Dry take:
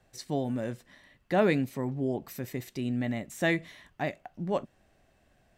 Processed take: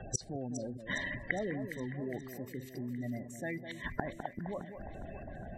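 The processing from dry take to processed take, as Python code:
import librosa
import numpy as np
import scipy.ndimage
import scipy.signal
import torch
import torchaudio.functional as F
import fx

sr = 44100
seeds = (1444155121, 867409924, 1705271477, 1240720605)

p1 = fx.spec_gate(x, sr, threshold_db=-15, keep='strong')
p2 = fx.over_compress(p1, sr, threshold_db=-32.0, ratio=-1.0)
p3 = p1 + (p2 * librosa.db_to_amplitude(-0.5))
p4 = fx.gate_flip(p3, sr, shuts_db=-32.0, range_db=-28)
p5 = fx.echo_alternate(p4, sr, ms=205, hz=1600.0, feedback_pct=76, wet_db=-9.0)
y = p5 * librosa.db_to_amplitude(14.0)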